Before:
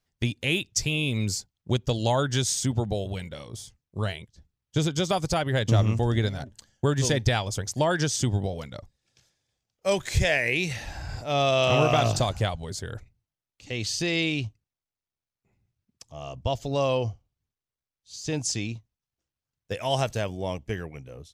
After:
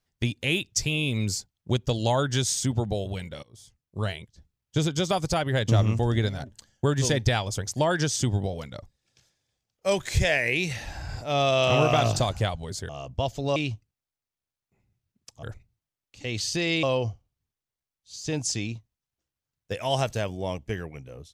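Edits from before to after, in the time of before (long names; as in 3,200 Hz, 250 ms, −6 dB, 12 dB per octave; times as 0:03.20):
0:03.43–0:04.05: fade in, from −22.5 dB
0:12.89–0:14.29: swap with 0:16.16–0:16.83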